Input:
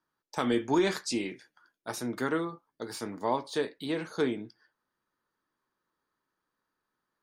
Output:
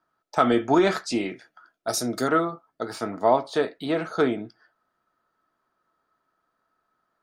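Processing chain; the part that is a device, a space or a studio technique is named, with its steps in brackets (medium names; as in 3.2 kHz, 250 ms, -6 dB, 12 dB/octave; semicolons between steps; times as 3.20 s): 1.88–2.28 s: FFT filter 590 Hz 0 dB, 930 Hz -8 dB, 2.9 kHz -2 dB, 4.9 kHz +13 dB; inside a helmet (treble shelf 5.7 kHz -9 dB; small resonant body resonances 680/1300 Hz, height 13 dB, ringing for 35 ms); trim +5.5 dB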